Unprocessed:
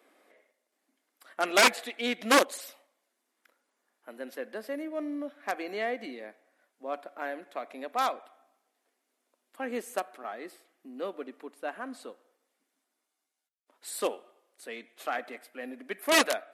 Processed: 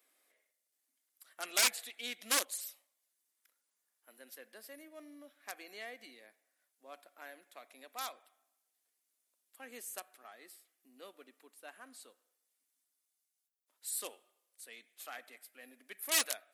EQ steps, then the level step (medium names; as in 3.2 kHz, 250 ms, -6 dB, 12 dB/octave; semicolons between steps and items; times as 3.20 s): pre-emphasis filter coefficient 0.9; 0.0 dB